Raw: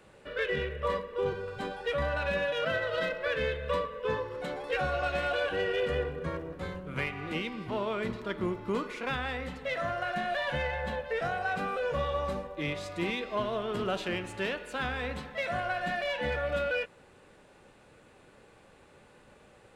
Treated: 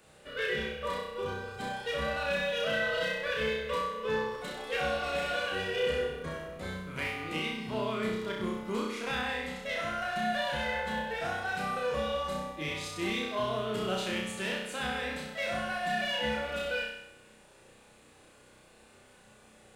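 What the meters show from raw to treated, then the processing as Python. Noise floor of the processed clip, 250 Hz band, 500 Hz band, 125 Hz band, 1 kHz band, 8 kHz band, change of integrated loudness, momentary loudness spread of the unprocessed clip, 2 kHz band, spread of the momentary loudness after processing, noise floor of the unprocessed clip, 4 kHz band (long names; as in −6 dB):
−58 dBFS, +0.5 dB, −1.5 dB, −3.5 dB, −0.5 dB, +7.5 dB, −0.5 dB, 5 LU, +0.5 dB, 6 LU, −58 dBFS, +4.0 dB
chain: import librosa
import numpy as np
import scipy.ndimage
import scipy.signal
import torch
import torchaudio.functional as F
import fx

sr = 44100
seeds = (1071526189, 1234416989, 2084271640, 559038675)

y = fx.high_shelf(x, sr, hz=4000.0, db=11.5)
y = fx.comb_fb(y, sr, f0_hz=220.0, decay_s=0.77, harmonics='odd', damping=0.0, mix_pct=60)
y = fx.room_flutter(y, sr, wall_m=5.5, rt60_s=0.8)
y = y * 10.0 ** (2.5 / 20.0)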